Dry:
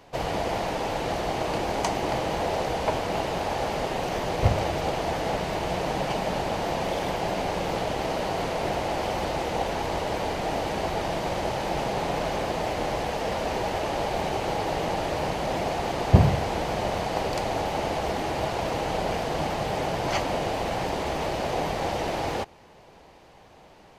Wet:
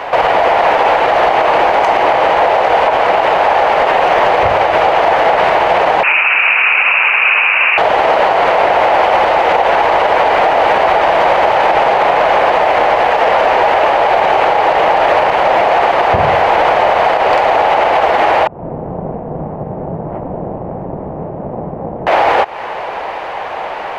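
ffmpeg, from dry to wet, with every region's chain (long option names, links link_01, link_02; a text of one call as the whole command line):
ffmpeg -i in.wav -filter_complex "[0:a]asettb=1/sr,asplit=3[link_01][link_02][link_03];[link_01]atrim=end=6.034[link_04];[link_02]atrim=start=6.03:end=7.78,asetpts=PTS-STARTPTS,afade=type=in:duration=0.004:curve=qsin,afade=type=out:start_time=1.746:duration=0.004:curve=qsin,highpass=510,lowpass=frequency=2700:width_type=q:width=0.5098,lowpass=frequency=2700:width_type=q:width=0.6013,lowpass=frequency=2700:width_type=q:width=0.9,lowpass=frequency=2700:width_type=q:width=2.563,afreqshift=-3200[link_05];[link_03]atrim=start=7.776[link_06];[link_04][link_05]acrossfade=duration=0.004:curve1=hsin:curve2=qsin[link_07];[link_07][link_06]acrossfade=duration=0.004:curve1=qsin:curve2=hsin,asettb=1/sr,asplit=3[link_08][link_09][link_10];[link_08]atrim=end=18.474[link_11];[link_09]atrim=start=18.47:end=22.07,asetpts=PTS-STARTPTS,afade=type=in:duration=0.004:curve=qsin,afade=type=out:start_time=3.596:duration=0.004:curve=qsin,lowshelf=frequency=110:gain=-10.5,tremolo=f=260:d=0.824,lowpass=frequency=170:width_type=q:width=1.9[link_12];[link_10]atrim=start=22.066[link_13];[link_11][link_12]acrossfade=duration=0.004:curve1=hsin:curve2=qsin[link_14];[link_14][link_13]acrossfade=duration=0.004:curve1=qsin:curve2=hsin,acrossover=split=520 2700:gain=0.0794 1 0.0708[link_15][link_16][link_17];[link_15][link_16][link_17]amix=inputs=3:normalize=0,acompressor=threshold=-39dB:ratio=6,alimiter=level_in=35dB:limit=-1dB:release=50:level=0:latency=1,volume=-1dB" out.wav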